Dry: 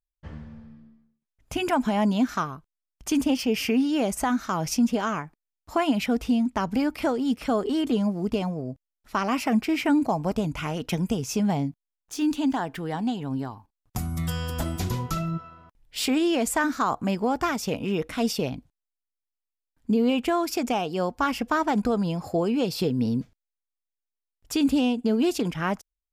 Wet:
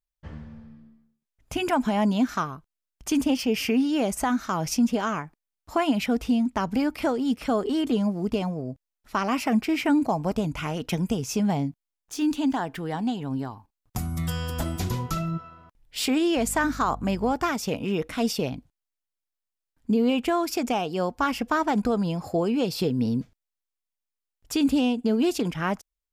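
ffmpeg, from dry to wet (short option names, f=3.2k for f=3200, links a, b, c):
-filter_complex "[0:a]asettb=1/sr,asplit=3[a][b][c];[a]atrim=end=16.374[d];[b]atrim=start=16.37:end=17.33,asetpts=PTS-STARTPTS,afade=t=in:d=0.004:c=qsin,afade=t=out:st=0.956:d=0.004:c=qsin,aeval=exprs='val(0)+0.0126*(sin(2*PI*50*n/s)+sin(2*PI*2*50*n/s)/2+sin(2*PI*3*50*n/s)/3+sin(2*PI*4*50*n/s)/4+sin(2*PI*5*50*n/s)/5)':c=same[e];[c]atrim=start=17.326[f];[d][e]acrossfade=d=0.004:c1=hsin:c2=qsin[g];[g][f]acrossfade=d=0.004:c1=qsin:c2=hsin"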